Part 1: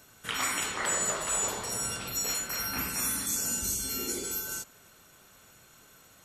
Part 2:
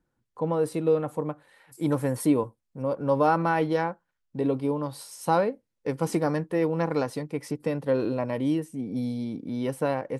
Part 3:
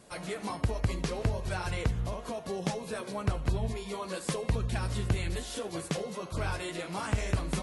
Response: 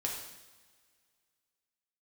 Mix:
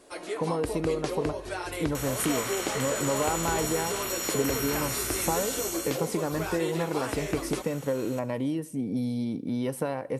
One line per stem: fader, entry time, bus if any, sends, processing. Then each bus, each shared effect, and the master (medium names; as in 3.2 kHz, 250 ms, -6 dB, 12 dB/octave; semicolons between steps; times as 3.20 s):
5.67 s -4.5 dB -> 6.09 s -16 dB, 1.95 s, send -6 dB, spectral levelling over time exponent 0.4; compression, threshold -29 dBFS, peak gain reduction 7.5 dB
+2.5 dB, 0.00 s, send -20.5 dB, treble shelf 8.6 kHz +7 dB; compression 6:1, threshold -29 dBFS, peak gain reduction 12 dB
+0.5 dB, 0.00 s, no send, resonant low shelf 230 Hz -10 dB, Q 3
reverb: on, pre-delay 3 ms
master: none